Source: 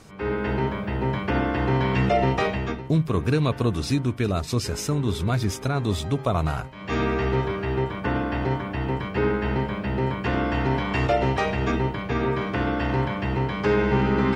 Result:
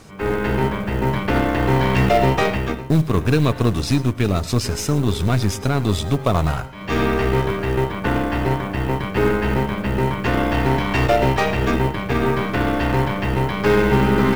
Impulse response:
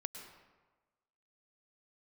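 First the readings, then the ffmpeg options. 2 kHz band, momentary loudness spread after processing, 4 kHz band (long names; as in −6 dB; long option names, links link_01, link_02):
+5.5 dB, 6 LU, +5.5 dB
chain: -filter_complex "[0:a]aeval=exprs='0.316*(cos(1*acos(clip(val(0)/0.316,-1,1)))-cos(1*PI/2))+0.01*(cos(3*acos(clip(val(0)/0.316,-1,1)))-cos(3*PI/2))+0.0178*(cos(8*acos(clip(val(0)/0.316,-1,1)))-cos(8*PI/2))':channel_layout=same,acrusher=bits=7:mode=log:mix=0:aa=0.000001,asplit=2[link_01][link_02];[1:a]atrim=start_sample=2205,afade=type=out:start_time=0.17:duration=0.01,atrim=end_sample=7938[link_03];[link_02][link_03]afir=irnorm=-1:irlink=0,volume=1.5dB[link_04];[link_01][link_04]amix=inputs=2:normalize=0"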